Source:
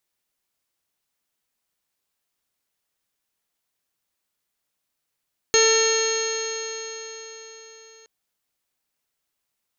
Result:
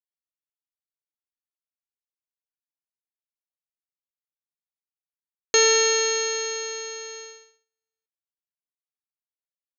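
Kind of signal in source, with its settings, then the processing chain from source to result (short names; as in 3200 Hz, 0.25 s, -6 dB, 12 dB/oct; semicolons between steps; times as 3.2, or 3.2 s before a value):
stretched partials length 2.52 s, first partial 444 Hz, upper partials -14/-11/-8/-12/-10.5/-11.5/-17/-4.5/-20/-17.5/-17.5/-1 dB, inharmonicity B 0.0016, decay 4.33 s, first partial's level -17 dB
gate -39 dBFS, range -45 dB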